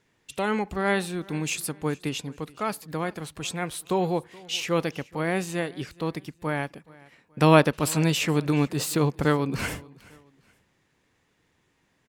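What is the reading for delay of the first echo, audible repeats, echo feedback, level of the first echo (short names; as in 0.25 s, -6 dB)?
0.425 s, 2, 35%, -23.0 dB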